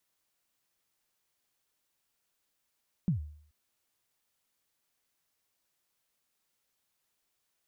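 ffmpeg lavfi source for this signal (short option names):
-f lavfi -i "aevalsrc='0.0794*pow(10,-3*t/0.58)*sin(2*PI*(200*0.118/log(75/200)*(exp(log(75/200)*min(t,0.118)/0.118)-1)+75*max(t-0.118,0)))':d=0.43:s=44100"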